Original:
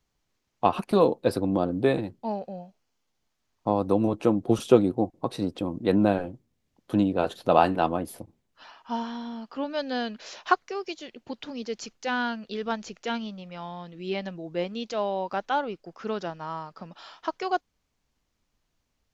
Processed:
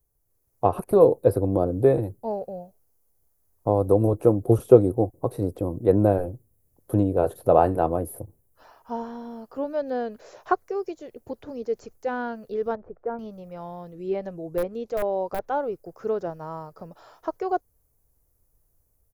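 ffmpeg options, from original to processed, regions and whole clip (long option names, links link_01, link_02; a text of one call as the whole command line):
ffmpeg -i in.wav -filter_complex "[0:a]asettb=1/sr,asplit=3[link_01][link_02][link_03];[link_01]atrim=end=12.754[link_04];[link_02]atrim=start=12.75:end=13.19,asetpts=PTS-STARTPTS,afade=type=in:duration=0.004:curve=qsin,afade=type=out:start_time=0.436:duration=0.004:curve=qsin,lowpass=frequency=1400:width=0.5412,lowpass=frequency=1400:width=1.3066,equalizer=frequency=150:width=0.72:gain=-5.5[link_05];[link_03]atrim=start=13.186[link_06];[link_04][link_05]acrossfade=duration=0.004:curve1=hsin:curve2=qsin[link_07];[link_07][link_06]acrossfade=duration=0.004:curve1=qsin:curve2=hsin,asettb=1/sr,asplit=3[link_08][link_09][link_10];[link_08]atrim=end=13.934[link_11];[link_09]atrim=start=13.93:end=15.4,asetpts=PTS-STARTPTS,afade=type=in:duration=0.004:curve=qsin,afade=type=out:start_time=1.466:duration=0.004:curve=qsin,lowpass=11000,aeval=exprs='(mod(7.94*val(0)+1,2)-1)/7.94':channel_layout=same[link_12];[link_10]atrim=start=15.396[link_13];[link_11][link_12]acrossfade=duration=0.004:curve1=hsin:curve2=qsin[link_14];[link_14][link_13]acrossfade=duration=0.004:curve1=qsin:curve2=hsin,acrossover=split=3600[link_15][link_16];[link_16]acompressor=threshold=-56dB:ratio=4:attack=1:release=60[link_17];[link_15][link_17]amix=inputs=2:normalize=0,firequalizer=gain_entry='entry(110,0);entry(200,-14);entry(440,-3);entry(880,-12);entry(3000,-25);entry(11000,10)':delay=0.05:min_phase=1,dynaudnorm=framelen=160:gausssize=5:maxgain=5.5dB,volume=4.5dB" out.wav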